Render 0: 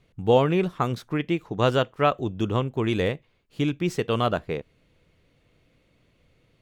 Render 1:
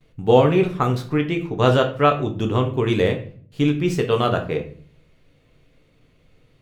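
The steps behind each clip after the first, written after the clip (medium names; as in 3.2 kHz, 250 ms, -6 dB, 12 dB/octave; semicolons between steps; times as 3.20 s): gate with hold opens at -55 dBFS; reverberation RT60 0.50 s, pre-delay 7 ms, DRR 3.5 dB; trim +2.5 dB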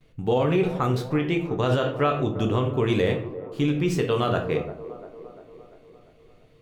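peak limiter -12 dBFS, peak gain reduction 10.5 dB; feedback echo behind a band-pass 346 ms, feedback 58%, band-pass 520 Hz, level -12 dB; trim -1 dB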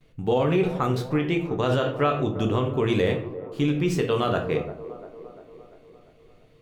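hum notches 60/120 Hz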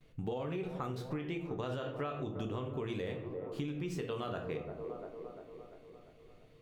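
compression 6:1, threshold -31 dBFS, peak gain reduction 13 dB; trim -4.5 dB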